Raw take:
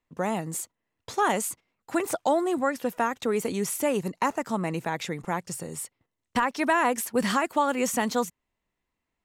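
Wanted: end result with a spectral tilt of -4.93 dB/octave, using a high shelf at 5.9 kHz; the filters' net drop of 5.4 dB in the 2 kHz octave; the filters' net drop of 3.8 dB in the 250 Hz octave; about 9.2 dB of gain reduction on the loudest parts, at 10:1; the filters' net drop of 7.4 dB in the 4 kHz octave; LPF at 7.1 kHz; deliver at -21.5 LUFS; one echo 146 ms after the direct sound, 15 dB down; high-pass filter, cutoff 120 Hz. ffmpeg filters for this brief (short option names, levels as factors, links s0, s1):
-af "highpass=120,lowpass=7100,equalizer=f=250:t=o:g=-4.5,equalizer=f=2000:t=o:g=-5,equalizer=f=4000:t=o:g=-5,highshelf=f=5900:g=-7.5,acompressor=threshold=0.0316:ratio=10,aecho=1:1:146:0.178,volume=5.62"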